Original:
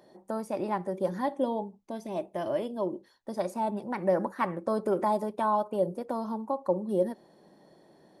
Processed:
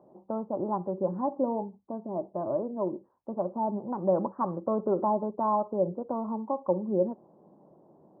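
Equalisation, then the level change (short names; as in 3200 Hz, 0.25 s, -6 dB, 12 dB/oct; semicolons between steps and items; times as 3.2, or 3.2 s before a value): HPF 60 Hz; steep low-pass 1200 Hz 48 dB/oct; low shelf 160 Hz +4 dB; 0.0 dB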